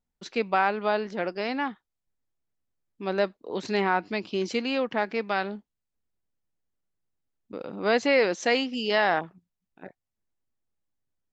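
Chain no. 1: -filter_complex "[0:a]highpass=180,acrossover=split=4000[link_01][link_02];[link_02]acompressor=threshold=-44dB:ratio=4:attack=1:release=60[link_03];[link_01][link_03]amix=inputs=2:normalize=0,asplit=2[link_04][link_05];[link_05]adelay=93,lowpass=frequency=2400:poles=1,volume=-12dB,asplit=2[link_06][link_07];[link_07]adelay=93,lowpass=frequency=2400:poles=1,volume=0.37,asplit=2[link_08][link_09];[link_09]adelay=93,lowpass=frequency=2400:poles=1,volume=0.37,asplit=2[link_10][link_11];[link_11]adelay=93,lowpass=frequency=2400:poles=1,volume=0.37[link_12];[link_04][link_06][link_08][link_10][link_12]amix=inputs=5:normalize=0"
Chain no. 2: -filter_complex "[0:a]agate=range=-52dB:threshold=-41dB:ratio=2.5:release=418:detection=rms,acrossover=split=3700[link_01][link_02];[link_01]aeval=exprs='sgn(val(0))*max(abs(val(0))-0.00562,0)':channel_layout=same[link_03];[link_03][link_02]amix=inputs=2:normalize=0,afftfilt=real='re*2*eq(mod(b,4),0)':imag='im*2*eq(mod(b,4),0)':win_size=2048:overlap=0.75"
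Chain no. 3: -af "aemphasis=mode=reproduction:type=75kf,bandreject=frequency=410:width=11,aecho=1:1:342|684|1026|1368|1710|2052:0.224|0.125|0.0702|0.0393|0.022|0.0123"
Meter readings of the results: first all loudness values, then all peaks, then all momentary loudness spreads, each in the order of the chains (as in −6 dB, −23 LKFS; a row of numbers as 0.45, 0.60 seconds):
−27.0, −29.5, −28.5 LKFS; −9.5, −9.5, −11.0 dBFS; 13, 14, 19 LU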